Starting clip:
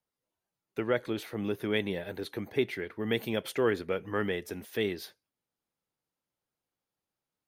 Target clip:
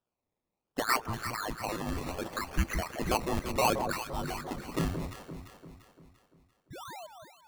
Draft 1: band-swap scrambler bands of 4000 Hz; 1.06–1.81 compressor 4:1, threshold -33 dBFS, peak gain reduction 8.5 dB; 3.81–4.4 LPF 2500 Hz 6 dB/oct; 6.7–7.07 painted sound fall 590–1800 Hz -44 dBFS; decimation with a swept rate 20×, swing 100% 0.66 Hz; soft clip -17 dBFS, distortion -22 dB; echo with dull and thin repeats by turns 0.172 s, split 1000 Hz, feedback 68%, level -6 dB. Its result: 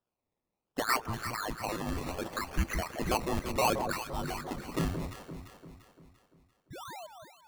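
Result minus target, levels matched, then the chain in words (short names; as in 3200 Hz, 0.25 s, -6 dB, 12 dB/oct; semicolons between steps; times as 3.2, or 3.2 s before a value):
soft clip: distortion +18 dB
band-swap scrambler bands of 4000 Hz; 1.06–1.81 compressor 4:1, threshold -33 dBFS, peak gain reduction 8.5 dB; 3.81–4.4 LPF 2500 Hz 6 dB/oct; 6.7–7.07 painted sound fall 590–1800 Hz -44 dBFS; decimation with a swept rate 20×, swing 100% 0.66 Hz; soft clip -7 dBFS, distortion -40 dB; echo with dull and thin repeats by turns 0.172 s, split 1000 Hz, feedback 68%, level -6 dB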